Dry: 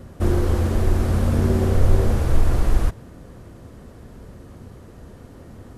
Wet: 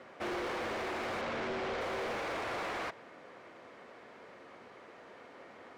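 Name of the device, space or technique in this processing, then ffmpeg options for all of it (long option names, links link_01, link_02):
megaphone: -filter_complex "[0:a]highpass=620,lowpass=3500,equalizer=frequency=2200:width_type=o:width=0.33:gain=7,asoftclip=type=hard:threshold=-34dB,asettb=1/sr,asplit=3[link_01][link_02][link_03];[link_01]atrim=end=1.214[link_04];[link_02]atrim=start=1.21:end=1.81,asetpts=PTS-STARTPTS,afade=type=in:duration=0.004:curve=qsin,afade=type=out:start_time=0.596:duration=0.004:curve=qsin,lowpass=6200[link_05];[link_03]atrim=start=1.806[link_06];[link_04][link_05]acrossfade=duration=0.004:curve1=hsin:curve2=qsin[link_07];[link_07][link_06]acrossfade=duration=0.004:curve1=qsin:curve2=hsin"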